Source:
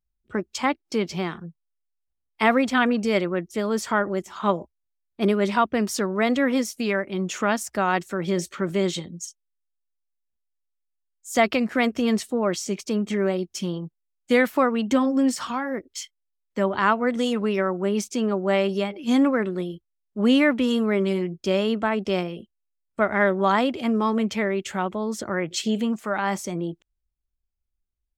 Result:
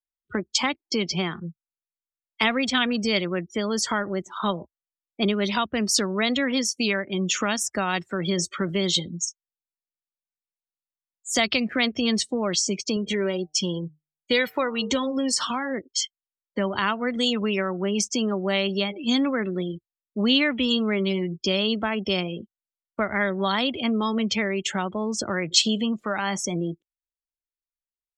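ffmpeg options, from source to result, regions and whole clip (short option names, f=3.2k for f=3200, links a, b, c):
-filter_complex "[0:a]asettb=1/sr,asplit=3[a][b][c];[a]atrim=end=12.964[d];[b]atrim=start=12.96:end=15.38,asetpts=PTS-STARTPTS,afade=t=in:d=0.004:c=qsin,afade=t=out:st=2.416:d=0.004:c=qsin,aecho=1:1:2.1:0.38,atrim=end_sample=106722,bandreject=f=152.2:t=h:w=4,bandreject=f=304.4:t=h:w=4,bandreject=f=456.6:t=h:w=4,bandreject=f=608.8:t=h:w=4,bandreject=f=761:t=h:w=4,bandreject=f=913.2:t=h:w=4,bandreject=f=1.0654k:t=h:w=4,bandreject=f=1.2176k:t=h:w=4[e];[c]atrim=start=15.376[f];[d][e]acrossfade=d=0.004:c1=hsin:c2=qsin[g];[g][f]acrossfade=d=0.004:c1=qsin:c2=hsin,afftdn=nr=30:nf=-39,equalizer=f=4k:w=0.87:g=9,acrossover=split=150|3000[h][i][j];[i]acompressor=threshold=-31dB:ratio=2.5[k];[h][k][j]amix=inputs=3:normalize=0,volume=4dB"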